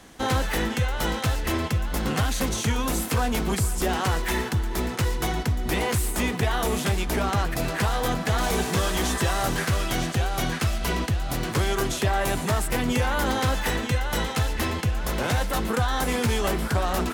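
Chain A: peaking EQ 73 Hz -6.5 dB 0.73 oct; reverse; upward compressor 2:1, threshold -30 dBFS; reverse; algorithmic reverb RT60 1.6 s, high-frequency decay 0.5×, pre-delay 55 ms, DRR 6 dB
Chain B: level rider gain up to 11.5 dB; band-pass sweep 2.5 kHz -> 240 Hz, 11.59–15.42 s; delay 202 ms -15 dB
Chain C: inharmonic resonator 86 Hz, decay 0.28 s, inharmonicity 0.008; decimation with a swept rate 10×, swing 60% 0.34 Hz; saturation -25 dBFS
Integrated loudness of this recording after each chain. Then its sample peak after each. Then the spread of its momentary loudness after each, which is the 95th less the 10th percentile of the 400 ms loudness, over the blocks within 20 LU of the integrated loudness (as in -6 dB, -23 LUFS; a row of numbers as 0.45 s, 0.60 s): -25.5 LUFS, -25.0 LUFS, -35.5 LUFS; -11.5 dBFS, -8.5 dBFS, -25.5 dBFS; 3 LU, 6 LU, 3 LU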